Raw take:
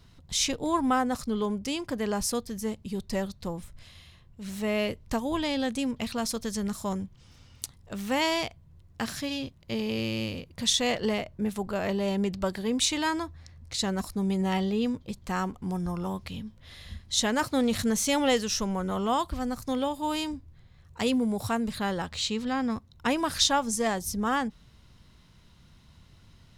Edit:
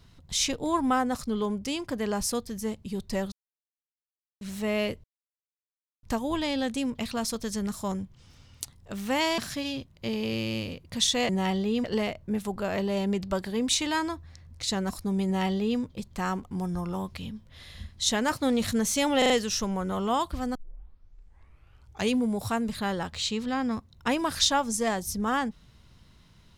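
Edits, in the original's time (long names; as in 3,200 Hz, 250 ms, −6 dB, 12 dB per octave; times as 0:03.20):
0:03.32–0:04.41: silence
0:05.04: splice in silence 0.99 s
0:08.39–0:09.04: remove
0:14.36–0:14.91: duplicate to 0:10.95
0:18.29: stutter 0.04 s, 4 plays
0:19.54: tape start 1.64 s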